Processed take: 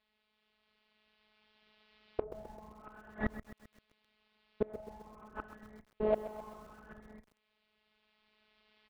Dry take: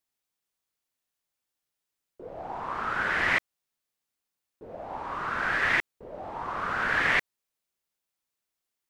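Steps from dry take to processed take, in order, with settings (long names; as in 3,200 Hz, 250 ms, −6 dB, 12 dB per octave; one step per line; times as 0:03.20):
camcorder AGC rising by 7.5 dB per second
phases set to zero 214 Hz
dynamic equaliser 770 Hz, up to +5 dB, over −44 dBFS, Q 1.9
asymmetric clip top −31.5 dBFS
Butterworth low-pass 4,200 Hz 48 dB per octave
parametric band 64 Hz +8 dB 1.4 octaves
double-tracking delay 37 ms −13.5 dB
treble cut that deepens with the level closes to 540 Hz, closed at −28 dBFS
gate with flip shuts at −31 dBFS, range −28 dB
feedback echo at a low word length 130 ms, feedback 55%, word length 11 bits, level −12.5 dB
level +13 dB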